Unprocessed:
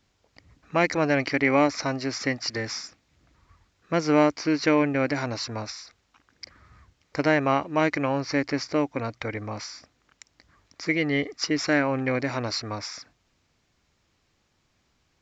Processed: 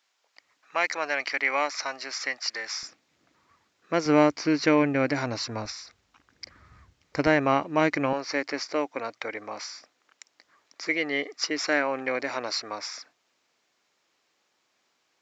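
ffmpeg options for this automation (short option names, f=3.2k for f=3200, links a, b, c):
-af "asetnsamples=n=441:p=0,asendcmd='2.83 highpass f 240;4.06 highpass f 100;5.65 highpass f 45;7.27 highpass f 130;8.13 highpass f 420',highpass=840"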